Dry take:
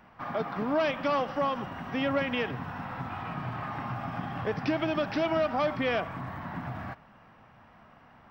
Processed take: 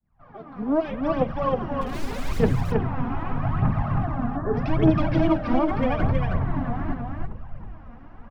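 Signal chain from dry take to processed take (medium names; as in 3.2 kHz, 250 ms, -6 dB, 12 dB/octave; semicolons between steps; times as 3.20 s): fade-in on the opening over 1.90 s; 5.32–6.07 s: compressor with a negative ratio -30 dBFS, ratio -0.5; frequency-shifting echo 331 ms, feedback 64%, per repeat -87 Hz, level -22 dB; hard clipper -23.5 dBFS, distortion -20 dB; hum notches 60/120/180/240/300/360/420/480/540/600 Hz; 1.81–2.40 s: integer overflow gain 32.5 dB; 4.04–4.54 s: rippled Chebyshev low-pass 1.8 kHz, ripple 3 dB; phaser 0.82 Hz, delay 4.3 ms, feedback 72%; tilt EQ -4 dB/octave; delay 320 ms -3.5 dB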